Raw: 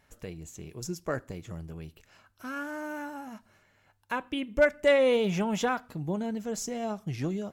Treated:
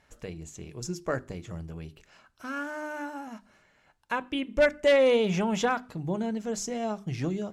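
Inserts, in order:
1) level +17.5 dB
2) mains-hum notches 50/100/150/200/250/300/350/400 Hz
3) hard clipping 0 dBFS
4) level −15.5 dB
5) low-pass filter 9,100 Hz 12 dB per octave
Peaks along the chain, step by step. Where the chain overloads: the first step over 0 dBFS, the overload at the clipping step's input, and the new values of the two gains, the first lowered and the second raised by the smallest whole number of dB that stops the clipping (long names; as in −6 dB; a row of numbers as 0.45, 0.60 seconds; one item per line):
+4.5, +5.0, 0.0, −15.5, −15.0 dBFS
step 1, 5.0 dB
step 1 +12.5 dB, step 4 −10.5 dB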